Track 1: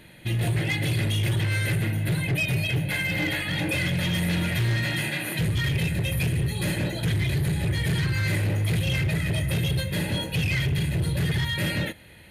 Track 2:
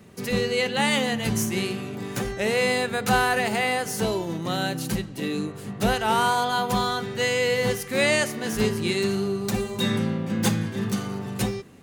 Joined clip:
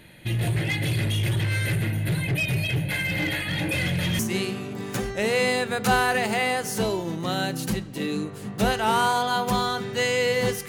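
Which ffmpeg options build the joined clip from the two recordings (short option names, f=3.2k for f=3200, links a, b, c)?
-filter_complex "[1:a]asplit=2[a][b];[0:a]apad=whole_dur=10.68,atrim=end=10.68,atrim=end=4.192[c];[b]atrim=start=1.408:end=7.9[d];[a]atrim=start=1:end=1.41,asetpts=PTS-STARTPTS,volume=-15dB,afade=t=in:d=0.004:c=hsin,afade=t=out:st=0.406:d=0.004:c=hsin,adelay=3780[e];[c][d]acrossfade=d=0.004:c1=hsin:c2=hsin[f];[f][e]amix=inputs=2:normalize=0"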